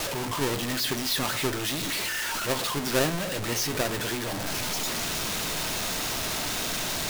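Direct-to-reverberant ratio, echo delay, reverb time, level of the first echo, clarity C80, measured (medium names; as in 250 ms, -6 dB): 11.5 dB, no echo, 0.50 s, no echo, 24.0 dB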